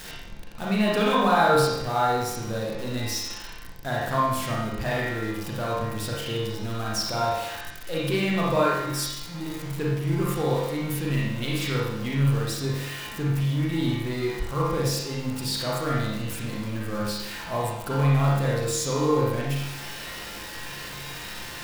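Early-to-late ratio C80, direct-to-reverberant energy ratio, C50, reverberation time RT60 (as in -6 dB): 2.0 dB, -6.0 dB, -2.0 dB, 0.90 s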